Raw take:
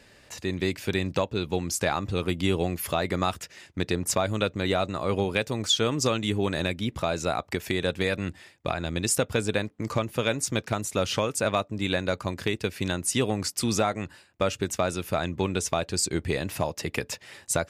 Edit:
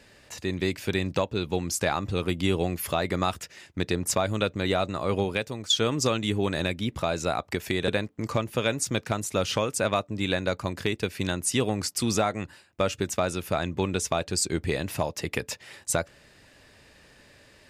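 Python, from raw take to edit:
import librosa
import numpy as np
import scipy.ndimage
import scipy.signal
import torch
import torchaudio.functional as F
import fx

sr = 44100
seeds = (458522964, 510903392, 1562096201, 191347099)

y = fx.edit(x, sr, fx.fade_out_to(start_s=5.21, length_s=0.49, floor_db=-9.5),
    fx.cut(start_s=7.88, length_s=1.61), tone=tone)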